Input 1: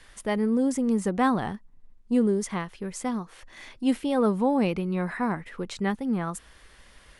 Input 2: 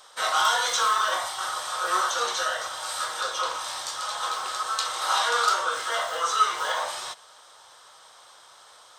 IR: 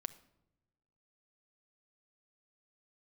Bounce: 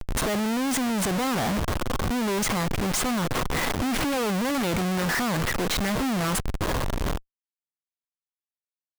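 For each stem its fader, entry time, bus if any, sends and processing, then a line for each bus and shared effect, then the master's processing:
−4.0 dB, 0.00 s, no send, leveller curve on the samples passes 5; brickwall limiter −15.5 dBFS, peak gain reduction 3.5 dB
−7.0 dB, 0.00 s, no send, downward compressor 6 to 1, threshold −31 dBFS, peak gain reduction 15 dB; high-pass filter 83 Hz 6 dB per octave; comb filter 1.9 ms, depth 89%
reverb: not used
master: notch filter 7,700 Hz, Q 26; comparator with hysteresis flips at −33.5 dBFS

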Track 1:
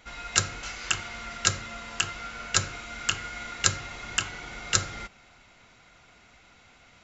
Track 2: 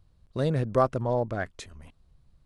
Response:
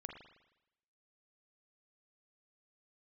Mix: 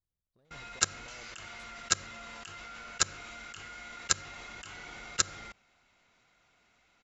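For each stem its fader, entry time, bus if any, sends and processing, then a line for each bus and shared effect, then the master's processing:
−1.5 dB, 0.45 s, no send, mains-hum notches 60/120 Hz
−13.0 dB, 0.00 s, no send, downward compressor, threshold −29 dBFS, peak gain reduction 12 dB; soft clipping −29 dBFS, distortion −13 dB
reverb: not used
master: low-shelf EQ 180 Hz −5 dB; output level in coarse steps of 23 dB

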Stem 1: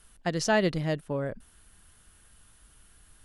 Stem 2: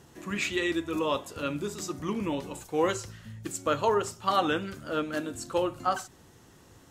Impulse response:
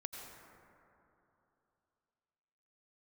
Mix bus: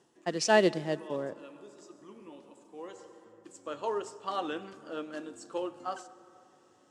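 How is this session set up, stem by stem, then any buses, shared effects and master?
−3.5 dB, 0.00 s, send −15.5 dB, log-companded quantiser 6 bits; multiband upward and downward expander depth 70%
−9.0 dB, 0.00 s, send −10.5 dB, floating-point word with a short mantissa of 4 bits; automatic ducking −16 dB, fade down 0.30 s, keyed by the first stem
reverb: on, RT60 3.0 s, pre-delay 78 ms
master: loudspeaker in its box 250–8,300 Hz, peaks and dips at 360 Hz +3 dB, 1,400 Hz −4 dB, 2,200 Hz −5 dB, 4,000 Hz −4 dB, 6,400 Hz −3 dB

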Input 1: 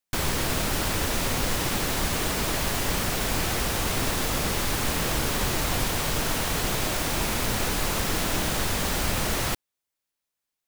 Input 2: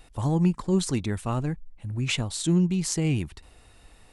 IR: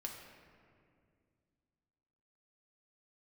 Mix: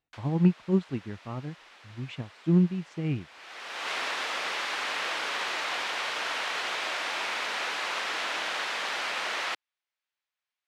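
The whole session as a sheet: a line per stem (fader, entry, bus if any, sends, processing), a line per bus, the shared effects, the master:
−2.0 dB, 0.00 s, no send, high-pass filter 510 Hz 12 dB per octave; tilt shelving filter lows −6.5 dB, about 880 Hz; automatic ducking −22 dB, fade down 0.20 s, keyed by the second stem
+1.5 dB, 0.00 s, no send, low-shelf EQ 82 Hz +10.5 dB; expander for the loud parts 2.5 to 1, over −38 dBFS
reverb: not used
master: band-pass filter 130–2,900 Hz

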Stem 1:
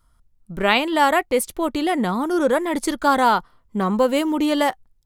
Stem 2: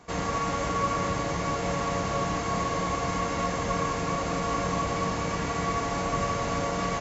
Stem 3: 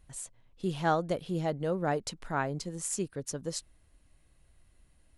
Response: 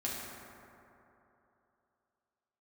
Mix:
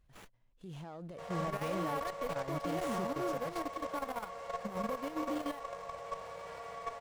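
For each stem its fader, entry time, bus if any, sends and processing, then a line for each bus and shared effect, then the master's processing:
−7.0 dB, 0.90 s, bus A, no send, downward compressor 2.5 to 1, threshold −29 dBFS, peak gain reduction 11.5 dB; sample-rate reduction 12,000 Hz, jitter 0%
−7.5 dB, 1.10 s, bus A, no send, low shelf with overshoot 390 Hz −11 dB, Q 3
−1.5 dB, 0.00 s, no bus, no send, brickwall limiter −26 dBFS, peak gain reduction 10.5 dB
bus A: 0.0 dB, notch filter 5,800 Hz, Q 12; brickwall limiter −24 dBFS, peak gain reduction 5.5 dB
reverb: not used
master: output level in coarse steps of 11 dB; harmonic and percussive parts rebalanced percussive −7 dB; windowed peak hold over 5 samples

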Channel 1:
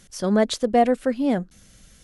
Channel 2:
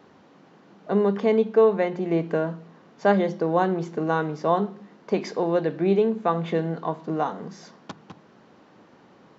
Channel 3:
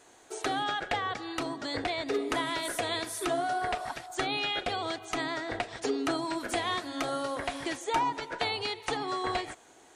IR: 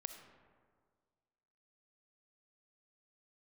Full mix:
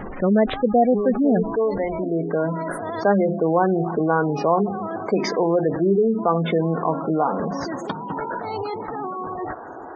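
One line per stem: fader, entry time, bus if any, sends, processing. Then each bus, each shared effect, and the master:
0.0 dB, 0.00 s, no send, Butterworth low-pass 2,600 Hz 36 dB per octave
−0.5 dB, 0.00 s, no send, parametric band 110 Hz −4.5 dB 0.86 octaves; automatic ducking −9 dB, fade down 0.90 s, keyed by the first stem
−7.0 dB, 0.00 s, no send, high shelf with overshoot 1,800 Hz −12 dB, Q 1.5; compressor whose output falls as the input rises −37 dBFS, ratio −1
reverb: not used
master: gate on every frequency bin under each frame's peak −20 dB strong; envelope flattener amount 50%

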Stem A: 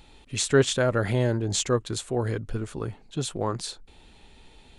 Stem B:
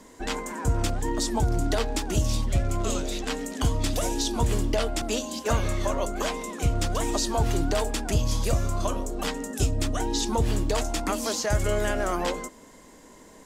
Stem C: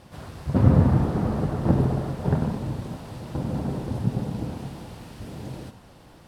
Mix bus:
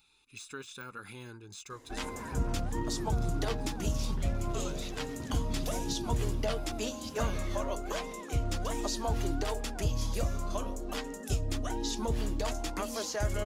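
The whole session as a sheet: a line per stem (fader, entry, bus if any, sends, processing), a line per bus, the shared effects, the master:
−13.5 dB, 0.00 s, bus A, no send, de-essing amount 90%; spectral tilt +3.5 dB per octave
−3.0 dB, 1.70 s, no bus, no send, no processing
−10.0 dB, 1.85 s, bus A, no send, high-shelf EQ 4,900 Hz +8 dB
bus A: 0.0 dB, comb filter 0.8 ms, depth 86%; downward compressor 4 to 1, threshold −34 dBFS, peak gain reduction 15.5 dB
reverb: not used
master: parametric band 8,100 Hz −5.5 dB 0.2 octaves; flanger 0.62 Hz, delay 1.4 ms, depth 3.6 ms, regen −63%

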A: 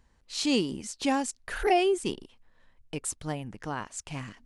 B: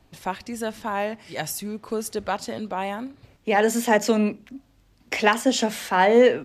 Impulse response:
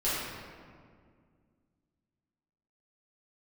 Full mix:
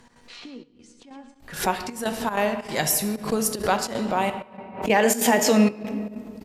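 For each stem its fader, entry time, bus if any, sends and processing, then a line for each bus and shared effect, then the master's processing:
−3.0 dB, 0.00 s, send −23 dB, echo send −10 dB, treble cut that deepens with the level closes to 1,500 Hz, closed at −23 dBFS; tuned comb filter 240 Hz, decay 0.38 s, harmonics all, mix 80%; multiband upward and downward compressor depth 100%
+2.0 dB, 1.40 s, muted 0:04.30–0:04.82, send −14.5 dB, no echo send, high-shelf EQ 7,000 Hz +8 dB; brickwall limiter −13 dBFS, peak gain reduction 8 dB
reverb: on, RT60 2.0 s, pre-delay 5 ms
echo: repeating echo 111 ms, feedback 38%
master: gate pattern "x.xxxxxx..xxx.xx" 190 BPM −12 dB; background raised ahead of every attack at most 130 dB per second

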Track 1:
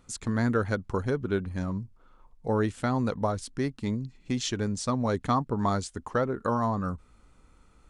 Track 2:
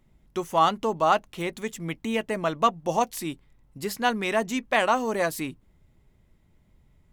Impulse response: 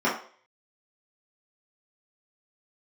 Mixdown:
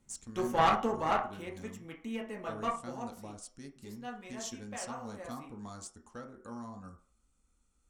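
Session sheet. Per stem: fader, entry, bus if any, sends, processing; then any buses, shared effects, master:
−6.0 dB, 0.00 s, send −19 dB, octave-band graphic EQ 125/250/500/1,000/2,000/4,000/8,000 Hz −9/−5/−9/−9/−7/−3/+7 dB
0:00.77 −2.5 dB → 0:01.45 −10.5 dB → 0:02.66 −10.5 dB → 0:03.04 −19 dB, 0.00 s, send −15 dB, no processing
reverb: on, RT60 0.45 s, pre-delay 3 ms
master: low-shelf EQ 200 Hz −5 dB; tube saturation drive 17 dB, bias 0.7

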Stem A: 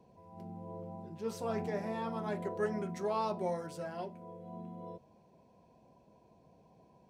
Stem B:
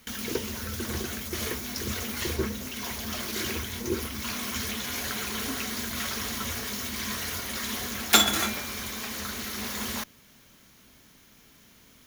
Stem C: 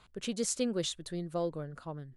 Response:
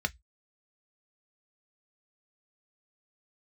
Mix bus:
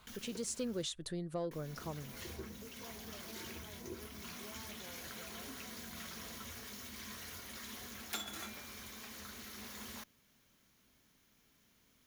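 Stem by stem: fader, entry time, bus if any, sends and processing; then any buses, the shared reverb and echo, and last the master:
−10.5 dB, 1.40 s, no send, downward compressor, threshold −42 dBFS, peak gain reduction 13 dB
−14.5 dB, 0.00 s, muted 0:00.83–0:01.51, no send, no processing
−1.5 dB, 0.00 s, no send, automatic gain control gain up to 6.5 dB; soft clipping −15.5 dBFS, distortion −24 dB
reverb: not used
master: downward compressor 2 to 1, threshold −44 dBFS, peak gain reduction 11 dB

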